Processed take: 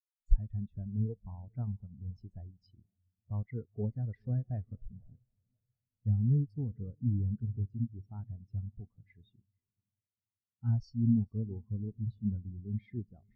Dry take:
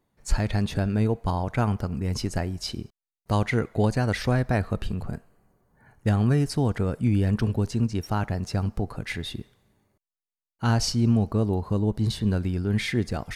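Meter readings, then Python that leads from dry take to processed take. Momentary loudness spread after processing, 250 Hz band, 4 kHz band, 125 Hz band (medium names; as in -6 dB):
16 LU, -11.0 dB, under -35 dB, -8.5 dB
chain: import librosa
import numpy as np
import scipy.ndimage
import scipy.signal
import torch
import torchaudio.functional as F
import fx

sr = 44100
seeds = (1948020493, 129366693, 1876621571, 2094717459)

p1 = x + fx.echo_diffused(x, sr, ms=482, feedback_pct=58, wet_db=-14.5, dry=0)
p2 = fx.spectral_expand(p1, sr, expansion=2.5)
y = F.gain(torch.from_numpy(p2), -1.5).numpy()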